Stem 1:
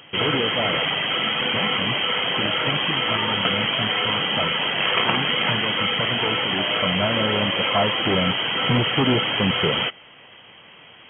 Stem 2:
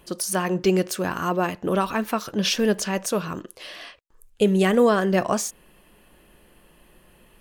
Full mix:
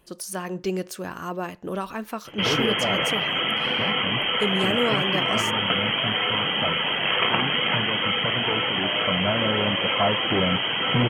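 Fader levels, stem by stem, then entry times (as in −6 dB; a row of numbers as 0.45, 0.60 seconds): −1.5, −7.0 decibels; 2.25, 0.00 seconds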